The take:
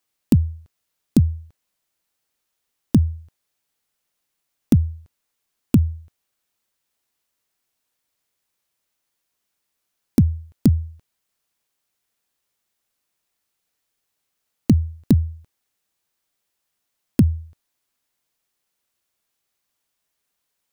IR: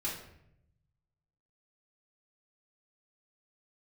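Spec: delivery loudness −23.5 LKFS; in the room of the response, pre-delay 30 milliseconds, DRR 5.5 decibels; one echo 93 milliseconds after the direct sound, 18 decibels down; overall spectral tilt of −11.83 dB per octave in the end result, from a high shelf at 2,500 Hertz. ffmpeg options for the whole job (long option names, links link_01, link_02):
-filter_complex "[0:a]highshelf=frequency=2500:gain=7,aecho=1:1:93:0.126,asplit=2[link_01][link_02];[1:a]atrim=start_sample=2205,adelay=30[link_03];[link_02][link_03]afir=irnorm=-1:irlink=0,volume=-8.5dB[link_04];[link_01][link_04]amix=inputs=2:normalize=0,volume=-3dB"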